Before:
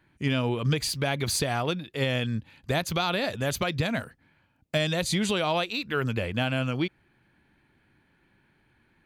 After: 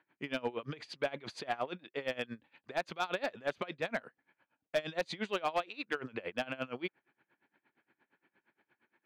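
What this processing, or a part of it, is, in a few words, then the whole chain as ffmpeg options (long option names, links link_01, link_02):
helicopter radio: -af "highpass=350,lowpass=2600,aeval=exprs='val(0)*pow(10,-23*(0.5-0.5*cos(2*PI*8.6*n/s))/20)':channel_layout=same,asoftclip=type=hard:threshold=-24dB"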